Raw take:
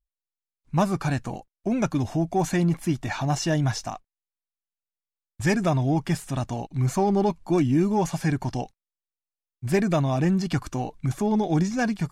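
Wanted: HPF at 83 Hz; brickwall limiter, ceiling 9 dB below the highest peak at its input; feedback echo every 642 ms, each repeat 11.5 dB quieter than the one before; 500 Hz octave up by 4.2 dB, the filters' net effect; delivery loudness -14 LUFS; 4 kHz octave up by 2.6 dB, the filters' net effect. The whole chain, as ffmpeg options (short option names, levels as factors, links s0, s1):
-af "highpass=83,equalizer=f=500:t=o:g=6,equalizer=f=4000:t=o:g=3.5,alimiter=limit=0.141:level=0:latency=1,aecho=1:1:642|1284|1926:0.266|0.0718|0.0194,volume=4.47"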